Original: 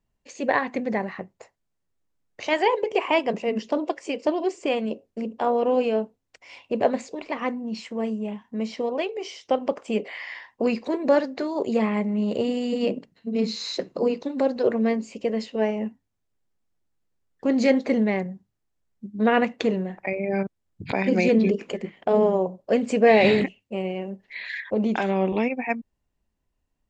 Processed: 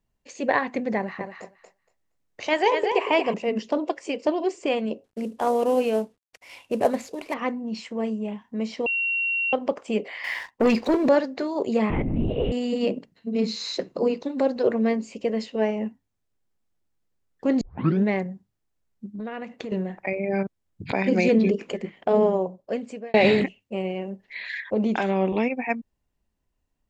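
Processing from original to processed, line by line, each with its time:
0.97–3.34 s: thinning echo 234 ms, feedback 15%, high-pass 380 Hz, level -5 dB
5.04–7.34 s: CVSD coder 64 kbps
8.86–9.53 s: bleep 2.74 kHz -22 dBFS
10.24–11.09 s: waveshaping leveller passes 2
11.90–12.52 s: LPC vocoder at 8 kHz whisper
17.61 s: tape start 0.44 s
19.05–19.72 s: compression, threshold -31 dBFS
22.25–23.14 s: fade out

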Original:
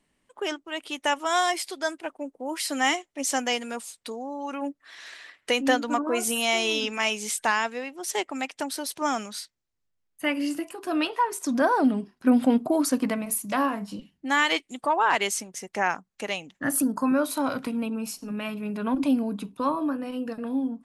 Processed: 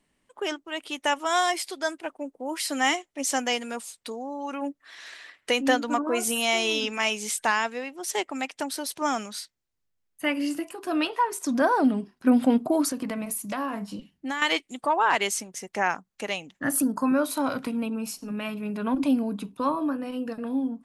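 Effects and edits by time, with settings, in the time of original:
12.88–14.42 s: compression, threshold -26 dBFS

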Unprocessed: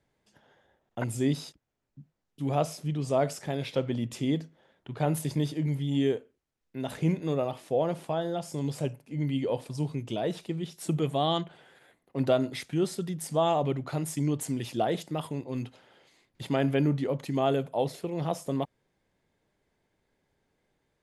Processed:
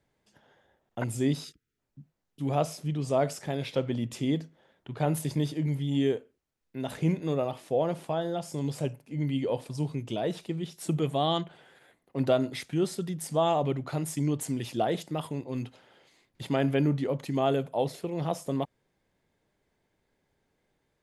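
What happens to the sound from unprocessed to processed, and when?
1.44–1.78 s: time-frequency box 490–1200 Hz -23 dB

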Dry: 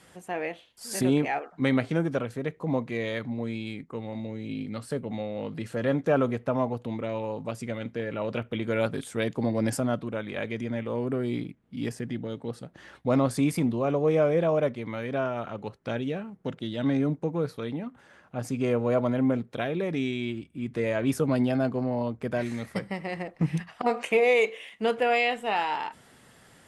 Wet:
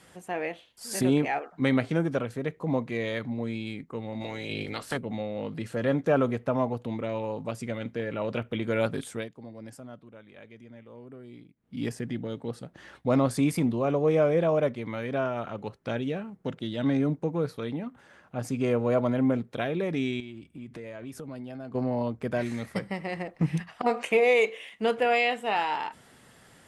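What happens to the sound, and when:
4.20–4.96 s: spectral peaks clipped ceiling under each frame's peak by 21 dB
9.09–11.75 s: dip -17 dB, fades 0.20 s
20.20–21.75 s: compression 4:1, threshold -39 dBFS
25.05–25.57 s: high-pass 130 Hz

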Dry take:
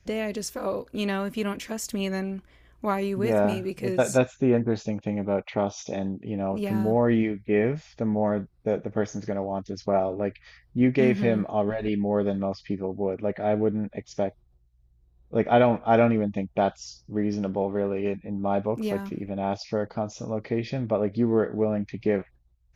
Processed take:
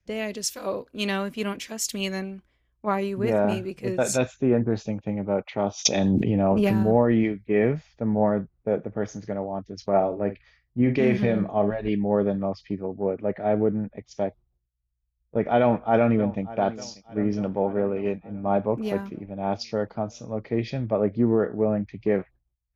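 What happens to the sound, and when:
5.85–6.83 s: level flattener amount 100%
9.96–11.71 s: doubling 49 ms -11 dB
15.59–16.42 s: echo throw 590 ms, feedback 65%, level -15 dB
whole clip: treble shelf 6.2 kHz -8 dB; peak limiter -15.5 dBFS; three bands expanded up and down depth 100%; trim +2.5 dB

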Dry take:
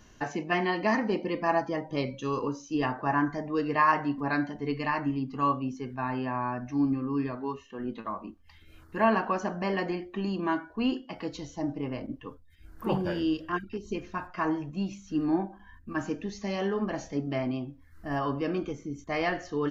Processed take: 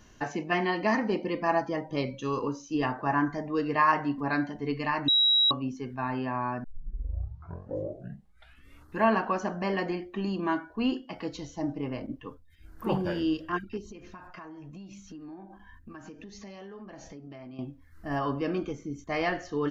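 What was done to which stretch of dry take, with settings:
5.08–5.51 s: bleep 3.86 kHz -19 dBFS
6.64 s: tape start 2.37 s
13.88–17.59 s: compression 12:1, threshold -41 dBFS

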